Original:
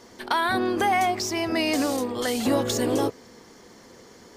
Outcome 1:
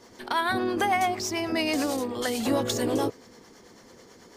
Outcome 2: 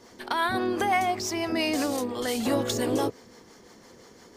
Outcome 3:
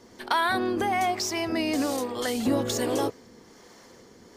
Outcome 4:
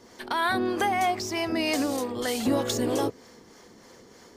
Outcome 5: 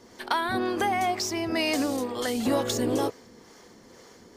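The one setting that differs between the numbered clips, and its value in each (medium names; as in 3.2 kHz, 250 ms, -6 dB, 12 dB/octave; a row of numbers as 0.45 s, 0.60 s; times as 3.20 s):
harmonic tremolo, rate: 9.1 Hz, 5.8 Hz, 1.2 Hz, 3.2 Hz, 2.1 Hz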